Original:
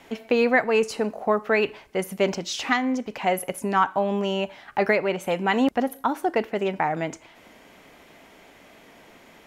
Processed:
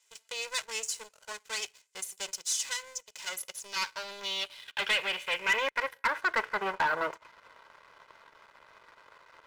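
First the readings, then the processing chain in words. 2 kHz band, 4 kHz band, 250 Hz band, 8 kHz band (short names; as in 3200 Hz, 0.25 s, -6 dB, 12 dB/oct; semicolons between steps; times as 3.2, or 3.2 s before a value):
-3.5 dB, +1.0 dB, -25.5 dB, +4.5 dB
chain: minimum comb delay 2 ms; band-pass sweep 7400 Hz -> 1200 Hz, 3.13–6.9; sample leveller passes 2; gain +1.5 dB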